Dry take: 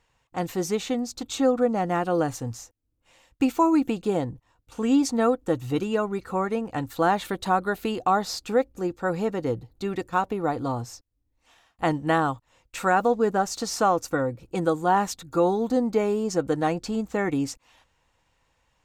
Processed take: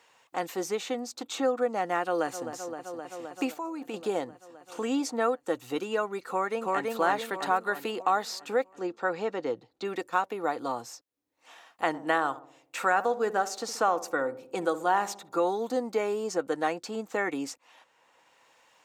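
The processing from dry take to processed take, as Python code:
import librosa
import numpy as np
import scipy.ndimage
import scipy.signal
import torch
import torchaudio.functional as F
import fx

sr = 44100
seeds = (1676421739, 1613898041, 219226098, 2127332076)

y = fx.echo_throw(x, sr, start_s=2.0, length_s=0.47, ms=260, feedback_pct=80, wet_db=-11.5)
y = fx.level_steps(y, sr, step_db=16, at=(3.54, 3.94))
y = fx.echo_throw(y, sr, start_s=6.28, length_s=0.63, ms=330, feedback_pct=55, wet_db=-0.5)
y = fx.lowpass(y, sr, hz=5200.0, slope=12, at=(8.75, 9.85))
y = fx.echo_filtered(y, sr, ms=64, feedback_pct=57, hz=950.0, wet_db=-13, at=(11.93, 15.4), fade=0.02)
y = scipy.signal.sosfilt(scipy.signal.butter(2, 380.0, 'highpass', fs=sr, output='sos'), y)
y = fx.dynamic_eq(y, sr, hz=1800.0, q=1.3, threshold_db=-37.0, ratio=4.0, max_db=4)
y = fx.band_squash(y, sr, depth_pct=40)
y = F.gain(torch.from_numpy(y), -3.0).numpy()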